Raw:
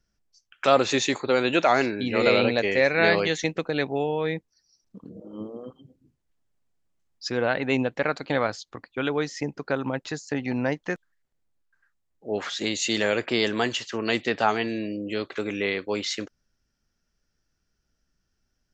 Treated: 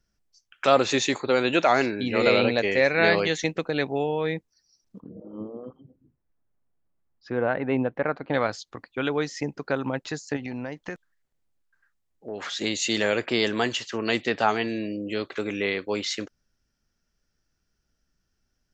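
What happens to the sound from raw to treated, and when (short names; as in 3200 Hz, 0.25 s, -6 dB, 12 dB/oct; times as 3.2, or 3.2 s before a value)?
5–8.34 LPF 1600 Hz
10.36–12.5 compressor, threshold -29 dBFS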